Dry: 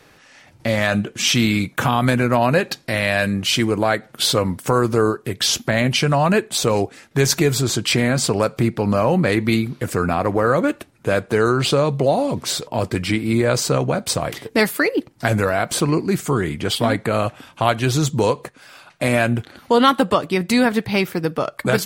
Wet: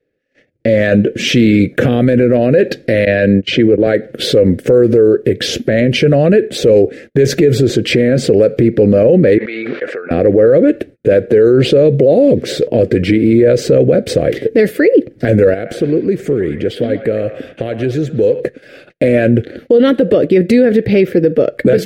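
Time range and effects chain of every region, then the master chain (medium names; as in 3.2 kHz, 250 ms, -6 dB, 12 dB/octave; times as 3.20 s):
3.05–3.87 s: gate -22 dBFS, range -28 dB + distance through air 96 m + three bands compressed up and down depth 40%
9.38–10.11 s: ladder band-pass 1.4 kHz, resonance 25% + level flattener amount 100%
15.54–18.40 s: compression 2.5:1, threshold -32 dBFS + feedback echo behind a band-pass 118 ms, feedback 42%, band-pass 1.3 kHz, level -6 dB
whole clip: gate -44 dBFS, range -32 dB; FFT filter 170 Hz 0 dB, 510 Hz +11 dB, 990 Hz -26 dB, 1.7 kHz -2 dB, 8 kHz -18 dB; loudness maximiser +12 dB; trim -1 dB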